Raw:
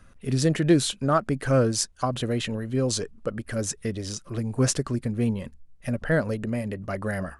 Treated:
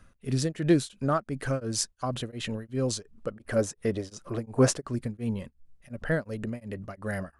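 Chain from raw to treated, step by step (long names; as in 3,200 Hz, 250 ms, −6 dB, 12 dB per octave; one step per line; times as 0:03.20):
0:03.36–0:04.89: parametric band 660 Hz +9 dB 2.5 octaves
tremolo along a rectified sine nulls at 2.8 Hz
level −2.5 dB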